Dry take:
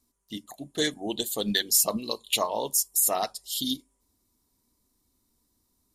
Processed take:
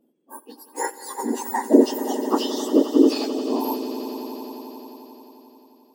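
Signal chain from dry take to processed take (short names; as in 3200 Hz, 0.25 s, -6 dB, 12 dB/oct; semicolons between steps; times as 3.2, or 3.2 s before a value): spectrum mirrored in octaves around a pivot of 1800 Hz; swelling echo 88 ms, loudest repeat 5, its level -15 dB; gain +1 dB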